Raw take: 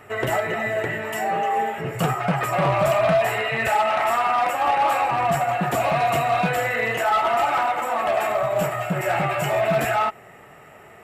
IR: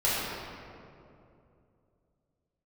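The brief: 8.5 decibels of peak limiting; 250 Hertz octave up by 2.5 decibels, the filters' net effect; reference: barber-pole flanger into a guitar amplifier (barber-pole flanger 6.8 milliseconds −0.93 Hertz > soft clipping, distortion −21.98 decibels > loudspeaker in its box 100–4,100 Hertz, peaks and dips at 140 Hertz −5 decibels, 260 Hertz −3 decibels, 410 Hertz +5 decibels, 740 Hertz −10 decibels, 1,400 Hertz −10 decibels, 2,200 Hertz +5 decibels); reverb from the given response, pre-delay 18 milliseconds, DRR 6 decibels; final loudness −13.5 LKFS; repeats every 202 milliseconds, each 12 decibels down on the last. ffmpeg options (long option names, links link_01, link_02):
-filter_complex "[0:a]equalizer=frequency=250:width_type=o:gain=6.5,alimiter=limit=-17.5dB:level=0:latency=1,aecho=1:1:202|404|606:0.251|0.0628|0.0157,asplit=2[link_01][link_02];[1:a]atrim=start_sample=2205,adelay=18[link_03];[link_02][link_03]afir=irnorm=-1:irlink=0,volume=-19dB[link_04];[link_01][link_04]amix=inputs=2:normalize=0,asplit=2[link_05][link_06];[link_06]adelay=6.8,afreqshift=-0.93[link_07];[link_05][link_07]amix=inputs=2:normalize=1,asoftclip=threshold=-16.5dB,highpass=100,equalizer=frequency=140:width_type=q:width=4:gain=-5,equalizer=frequency=260:width_type=q:width=4:gain=-3,equalizer=frequency=410:width_type=q:width=4:gain=5,equalizer=frequency=740:width_type=q:width=4:gain=-10,equalizer=frequency=1400:width_type=q:width=4:gain=-10,equalizer=frequency=2200:width_type=q:width=4:gain=5,lowpass=frequency=4100:width=0.5412,lowpass=frequency=4100:width=1.3066,volume=16dB"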